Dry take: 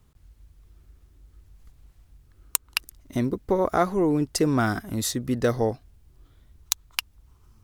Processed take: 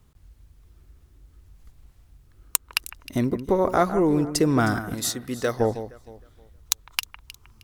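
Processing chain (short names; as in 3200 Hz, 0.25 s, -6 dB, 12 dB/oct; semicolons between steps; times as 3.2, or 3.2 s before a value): 4.94–5.6 low shelf 330 Hz -11.5 dB; echo with dull and thin repeats by turns 0.156 s, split 2100 Hz, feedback 51%, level -11 dB; gain +1.5 dB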